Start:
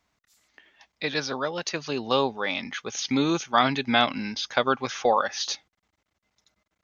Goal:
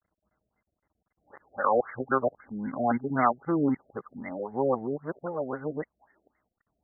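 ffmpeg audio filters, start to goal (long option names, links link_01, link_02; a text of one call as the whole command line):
ffmpeg -i in.wav -af "areverse,afftfilt=real='re*lt(b*sr/1024,700*pow(2200/700,0.5+0.5*sin(2*PI*3.8*pts/sr)))':imag='im*lt(b*sr/1024,700*pow(2200/700,0.5+0.5*sin(2*PI*3.8*pts/sr)))':win_size=1024:overlap=0.75,volume=-1.5dB" out.wav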